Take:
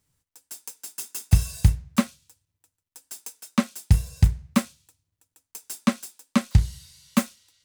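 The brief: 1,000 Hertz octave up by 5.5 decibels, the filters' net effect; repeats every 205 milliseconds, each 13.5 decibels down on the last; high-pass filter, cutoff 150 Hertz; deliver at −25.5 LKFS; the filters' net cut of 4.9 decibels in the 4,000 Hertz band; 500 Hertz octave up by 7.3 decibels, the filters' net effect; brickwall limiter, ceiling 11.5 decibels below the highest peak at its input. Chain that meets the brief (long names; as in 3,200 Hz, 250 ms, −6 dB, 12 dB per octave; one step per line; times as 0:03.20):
high-pass filter 150 Hz
parametric band 500 Hz +7 dB
parametric band 1,000 Hz +5.5 dB
parametric band 4,000 Hz −7 dB
brickwall limiter −16.5 dBFS
repeating echo 205 ms, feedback 21%, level −13.5 dB
level +9 dB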